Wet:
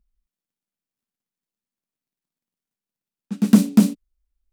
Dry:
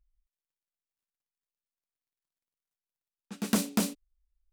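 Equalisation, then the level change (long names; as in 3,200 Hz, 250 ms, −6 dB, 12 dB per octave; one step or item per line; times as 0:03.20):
parametric band 210 Hz +14.5 dB 1.4 octaves
+1.5 dB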